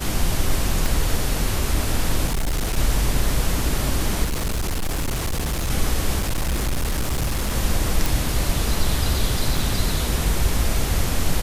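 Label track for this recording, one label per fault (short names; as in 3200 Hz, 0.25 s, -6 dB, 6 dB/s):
0.860000	0.860000	pop
2.260000	2.780000	clipped -18.5 dBFS
4.240000	5.710000	clipped -20 dBFS
6.190000	7.540000	clipped -18.5 dBFS
8.060000	8.060000	pop
9.570000	9.570000	gap 2.1 ms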